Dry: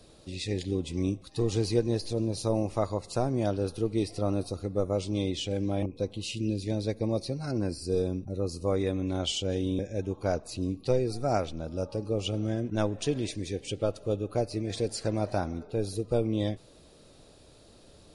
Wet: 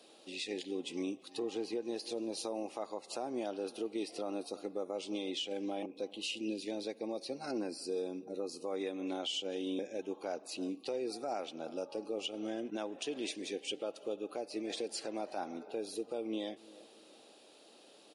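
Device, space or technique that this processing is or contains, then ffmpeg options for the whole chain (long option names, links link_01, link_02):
laptop speaker: -filter_complex "[0:a]asplit=3[link_01][link_02][link_03];[link_01]afade=type=out:start_time=1.38:duration=0.02[link_04];[link_02]highshelf=frequency=2800:gain=-10.5,afade=type=in:start_time=1.38:duration=0.02,afade=type=out:start_time=1.81:duration=0.02[link_05];[link_03]afade=type=in:start_time=1.81:duration=0.02[link_06];[link_04][link_05][link_06]amix=inputs=3:normalize=0,highpass=frequency=260:width=0.5412,highpass=frequency=260:width=1.3066,equalizer=frequency=800:width_type=o:width=0.2:gain=7,equalizer=frequency=2900:width_type=o:width=0.55:gain=7.5,asplit=2[link_07][link_08];[link_08]adelay=329,lowpass=frequency=1200:poles=1,volume=-23dB,asplit=2[link_09][link_10];[link_10]adelay=329,lowpass=frequency=1200:poles=1,volume=0.42,asplit=2[link_11][link_12];[link_12]adelay=329,lowpass=frequency=1200:poles=1,volume=0.42[link_13];[link_07][link_09][link_11][link_13]amix=inputs=4:normalize=0,alimiter=level_in=0.5dB:limit=-24dB:level=0:latency=1:release=184,volume=-0.5dB,volume=-3.5dB"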